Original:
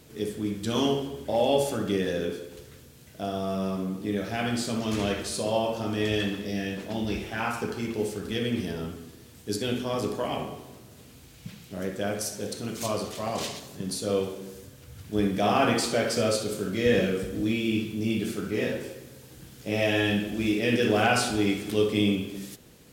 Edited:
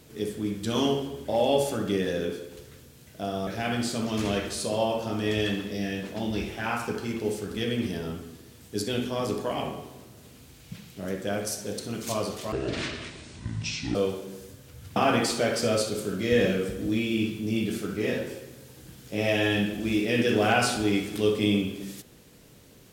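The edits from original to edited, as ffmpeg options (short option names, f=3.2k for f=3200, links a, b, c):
-filter_complex "[0:a]asplit=5[a][b][c][d][e];[a]atrim=end=3.472[f];[b]atrim=start=4.208:end=13.264[g];[c]atrim=start=13.26:end=14.09,asetpts=PTS-STARTPTS,asetrate=25578,aresample=44100[h];[d]atrim=start=14.086:end=15.102[i];[e]atrim=start=15.498[j];[f][g]acrossfade=d=0.004:c1=hsin:c2=hsin[k];[k][h]acrossfade=d=0.004:c1=hsin:c2=hsin[l];[l][i]acrossfade=d=0.004:c1=hsin:c2=hsin[m];[m][j]acrossfade=d=0.004:c1=hsin:c2=hsin"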